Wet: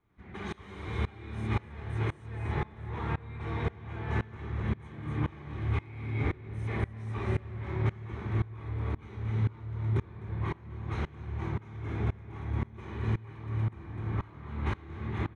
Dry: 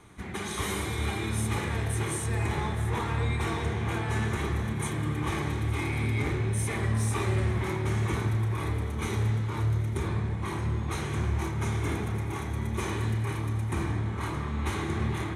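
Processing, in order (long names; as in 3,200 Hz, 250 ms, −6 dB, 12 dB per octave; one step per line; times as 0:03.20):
low-pass filter 2,800 Hz 12 dB per octave
low-shelf EQ 100 Hz +5 dB
single-tap delay 255 ms −7 dB
tremolo with a ramp in dB swelling 1.9 Hz, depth 24 dB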